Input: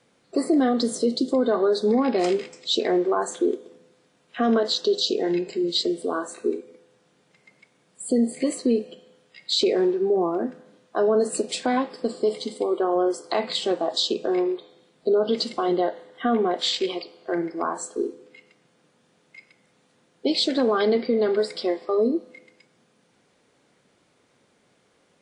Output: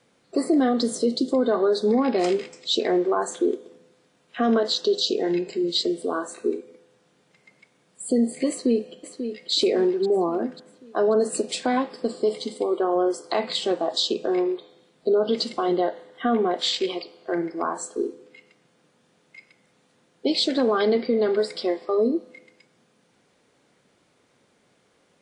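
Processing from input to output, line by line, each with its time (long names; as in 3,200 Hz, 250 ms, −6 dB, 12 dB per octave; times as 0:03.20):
0:08.49–0:09.51: delay throw 540 ms, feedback 50%, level −9 dB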